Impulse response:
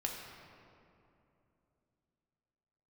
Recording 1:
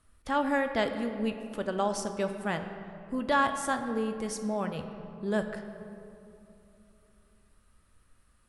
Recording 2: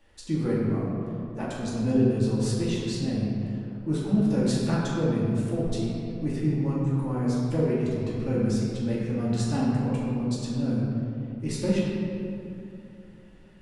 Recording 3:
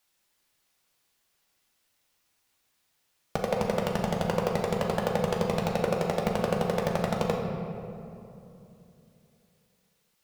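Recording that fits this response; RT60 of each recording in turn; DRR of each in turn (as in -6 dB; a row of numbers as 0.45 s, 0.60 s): 3; 2.9 s, 2.9 s, 2.9 s; 6.0 dB, -7.5 dB, -1.0 dB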